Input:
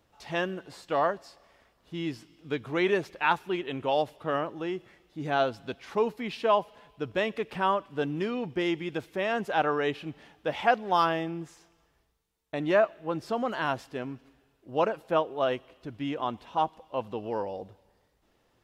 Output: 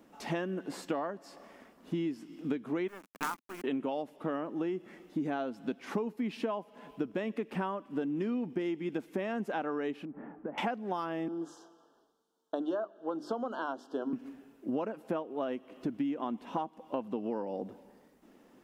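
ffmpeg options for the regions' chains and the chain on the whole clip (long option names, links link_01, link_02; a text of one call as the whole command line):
ffmpeg -i in.wav -filter_complex "[0:a]asettb=1/sr,asplit=3[link_01][link_02][link_03];[link_01]atrim=end=2.884[link_04];[link_02]atrim=start=2.88:end=3.64,asetpts=PTS-STARTPTS,afade=type=in:duration=0.004:curve=qsin,afade=type=out:start_time=0.756:duration=0.004:curve=qsin,bandpass=frequency=1200:width_type=q:width=5.1,acrusher=bits=6:dc=4:mix=0:aa=0.000001,acontrast=55[link_05];[link_03]atrim=start=3.636[link_06];[link_04][link_05]acrossfade=duration=0.004:curve1=hsin:curve2=qsin[link_07];[link_07][link_06]acrossfade=duration=0.004:curve1=qsin:curve2=hsin,asettb=1/sr,asplit=3[link_08][link_09][link_10];[link_08]atrim=end=10.054[link_11];[link_09]atrim=start=10.05:end=10.58,asetpts=PTS-STARTPTS,afade=type=in:duration=0.004:curve=qsin,afade=type=out:start_time=0.526:duration=0.004:curve=qsin,lowpass=frequency=1500:width=0.5412,lowpass=frequency=1500:width=1.3066,acompressor=threshold=-44dB:ratio=10:attack=3.2:release=140:knee=1:detection=peak[link_12];[link_10]atrim=start=10.576[link_13];[link_11][link_12]acrossfade=duration=0.004:curve1=hsin:curve2=qsin[link_14];[link_14][link_13]acrossfade=duration=0.004:curve1=qsin:curve2=hsin,asettb=1/sr,asplit=3[link_15][link_16][link_17];[link_15]atrim=end=11.284[link_18];[link_16]atrim=start=11.28:end=14.13,asetpts=PTS-STARTPTS,afade=type=in:duration=0.004:curve=qsin,afade=type=out:start_time=2.846:duration=0.004:curve=qsin,asuperstop=centerf=2200:order=8:qfactor=1.5,acrossover=split=310 6400:gain=0.126 1 0.224[link_19][link_20][link_21];[link_19][link_20][link_21]amix=inputs=3:normalize=0,bandreject=frequency=50:width_type=h:width=6,bandreject=frequency=100:width_type=h:width=6,bandreject=frequency=150:width_type=h:width=6,bandreject=frequency=200:width_type=h:width=6,bandreject=frequency=250:width_type=h:width=6,bandreject=frequency=300:width_type=h:width=6,bandreject=frequency=350:width_type=h:width=6,bandreject=frequency=400:width_type=h:width=6[link_22];[link_17]atrim=start=14.126[link_23];[link_18][link_22]acrossfade=duration=0.004:curve1=hsin:curve2=qsin[link_24];[link_24][link_23]acrossfade=duration=0.004:curve1=qsin:curve2=hsin,equalizer=frequency=125:width_type=o:width=1:gain=-7,equalizer=frequency=250:width_type=o:width=1:gain=11,equalizer=frequency=4000:width_type=o:width=1:gain=-6,acompressor=threshold=-37dB:ratio=16,lowshelf=frequency=120:width_type=q:width=1.5:gain=-9.5,volume=5.5dB" out.wav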